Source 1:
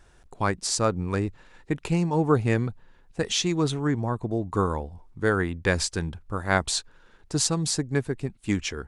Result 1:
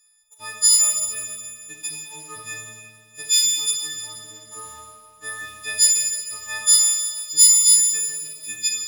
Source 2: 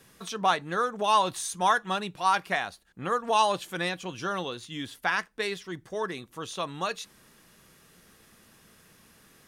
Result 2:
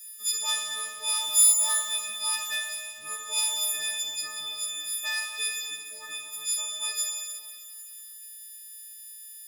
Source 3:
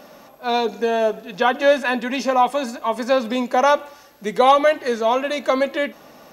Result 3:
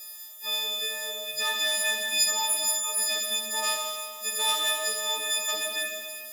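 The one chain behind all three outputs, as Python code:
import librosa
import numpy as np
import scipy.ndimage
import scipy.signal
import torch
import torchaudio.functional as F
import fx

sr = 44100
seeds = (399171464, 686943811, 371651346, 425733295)

y = fx.freq_snap(x, sr, grid_st=6)
y = fx.peak_eq(y, sr, hz=970.0, db=-6.0, octaves=1.6)
y = fx.leveller(y, sr, passes=1)
y = librosa.effects.preemphasis(y, coef=0.97, zi=[0.0])
y = fx.rev_schroeder(y, sr, rt60_s=2.0, comb_ms=27, drr_db=-0.5)
y = y * 10.0 ** (-1.5 / 20.0)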